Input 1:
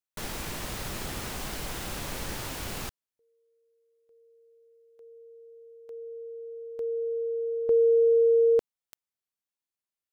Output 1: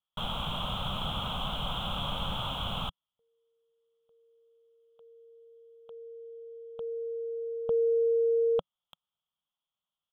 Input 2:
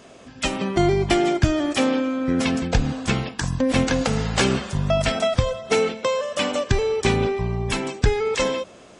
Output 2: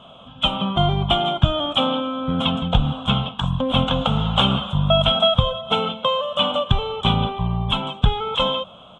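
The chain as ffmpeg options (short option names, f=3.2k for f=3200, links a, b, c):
-af "firequalizer=gain_entry='entry(110,0);entry(170,4);entry(350,-15);entry(550,-1);entry(810,3);entry(1300,5);entry(1800,-20);entry(3300,13);entry(4600,-28);entry(7400,-19)':delay=0.05:min_phase=1,volume=2dB"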